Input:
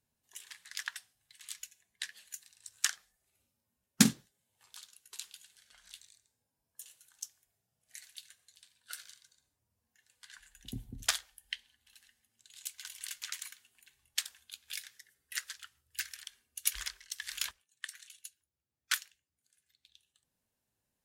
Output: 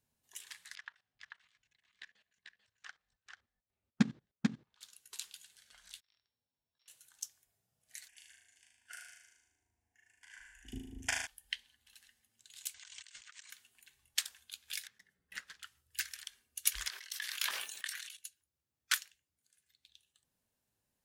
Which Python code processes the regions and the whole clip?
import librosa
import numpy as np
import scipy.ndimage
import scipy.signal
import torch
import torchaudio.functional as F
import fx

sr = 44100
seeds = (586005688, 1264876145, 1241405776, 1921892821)

y = fx.chain(x, sr, fx.level_steps(step_db=20),
    fx.spacing_loss(db_at_10k=32),
    fx.echo_single(ms=441, db=-3.5), at=(0.75, 4.81))
y = fx.chain(y, sr, fx.sample_sort(block=8),
    fx.ladder_lowpass(hz=4500.0, resonance_pct=55),
    fx.auto_swell(attack_ms=186.0), at=(6.0, 6.88))
y = fx.chain(y, sr, fx.lowpass(hz=7000.0, slope=12),
    fx.fixed_phaser(hz=810.0, stages=8),
    fx.room_flutter(wall_m=6.5, rt60_s=0.85), at=(8.08, 11.27))
y = fx.chain(y, sr, fx.over_compress(threshold_db=-55.0, ratio=-1.0),
    fx.cheby1_lowpass(hz=8500.0, order=6), at=(12.74, 13.5))
y = fx.chain(y, sr, fx.block_float(bits=5),
    fx.lowpass(hz=1400.0, slope=6),
    fx.peak_eq(hz=190.0, db=12.0, octaves=0.3), at=(14.87, 15.63))
y = fx.chain(y, sr, fx.highpass(hz=470.0, slope=12),
    fx.peak_eq(hz=7500.0, db=-6.0, octaves=0.84),
    fx.sustainer(db_per_s=44.0), at=(16.89, 18.17))